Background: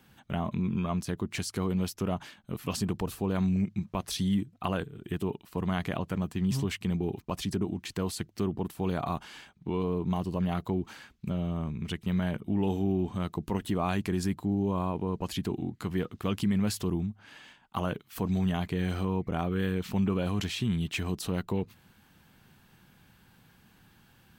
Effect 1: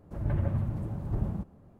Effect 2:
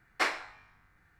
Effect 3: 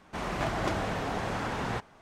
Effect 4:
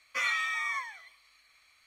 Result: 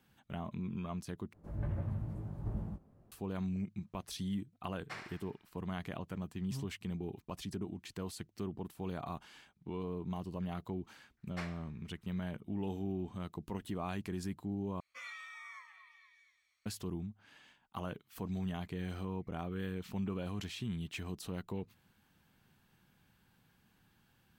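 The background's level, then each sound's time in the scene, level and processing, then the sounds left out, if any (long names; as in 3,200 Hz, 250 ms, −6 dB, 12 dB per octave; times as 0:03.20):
background −10 dB
0:01.33: overwrite with 1 −9.5 dB + double-tracking delay 19 ms −5 dB
0:04.70: mix in 2 −17.5 dB + feedback echo with a high-pass in the loop 71 ms, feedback 55%, level −7 dB
0:11.17: mix in 2 −16.5 dB
0:14.80: overwrite with 4 −18 dB + echo through a band-pass that steps 237 ms, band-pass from 1,000 Hz, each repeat 0.7 octaves, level −9 dB
not used: 3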